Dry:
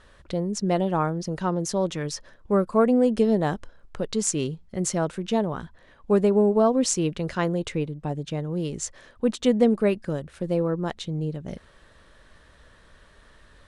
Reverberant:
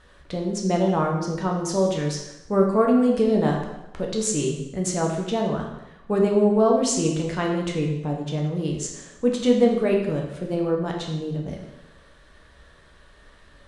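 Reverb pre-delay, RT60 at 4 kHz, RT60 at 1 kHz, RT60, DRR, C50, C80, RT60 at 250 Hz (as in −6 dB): 4 ms, 0.85 s, 0.95 s, 0.95 s, −0.5 dB, 4.5 dB, 6.5 dB, 0.90 s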